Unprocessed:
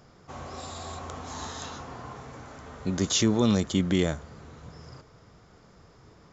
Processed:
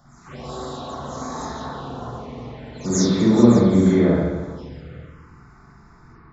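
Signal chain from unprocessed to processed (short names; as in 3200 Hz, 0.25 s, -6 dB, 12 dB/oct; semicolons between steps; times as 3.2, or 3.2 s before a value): spectral delay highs early, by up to 0.217 s; spring tank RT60 1.3 s, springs 42/50 ms, chirp 20 ms, DRR -7 dB; envelope phaser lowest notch 400 Hz, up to 2900 Hz, full sweep at -28 dBFS; gain +2.5 dB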